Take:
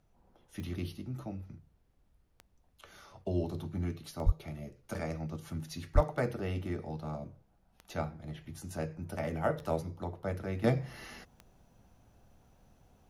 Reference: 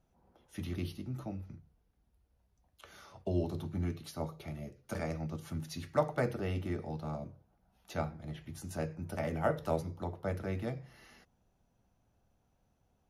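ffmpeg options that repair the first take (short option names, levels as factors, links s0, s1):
-filter_complex "[0:a]adeclick=t=4,asplit=3[s0][s1][s2];[s0]afade=t=out:st=4.25:d=0.02[s3];[s1]highpass=f=140:w=0.5412,highpass=f=140:w=1.3066,afade=t=in:st=4.25:d=0.02,afade=t=out:st=4.37:d=0.02[s4];[s2]afade=t=in:st=4.37:d=0.02[s5];[s3][s4][s5]amix=inputs=3:normalize=0,asplit=3[s6][s7][s8];[s6]afade=t=out:st=5.94:d=0.02[s9];[s7]highpass=f=140:w=0.5412,highpass=f=140:w=1.3066,afade=t=in:st=5.94:d=0.02,afade=t=out:st=6.06:d=0.02[s10];[s8]afade=t=in:st=6.06:d=0.02[s11];[s9][s10][s11]amix=inputs=3:normalize=0,agate=range=0.0891:threshold=0.00112,asetnsamples=n=441:p=0,asendcmd='10.64 volume volume -10.5dB',volume=1"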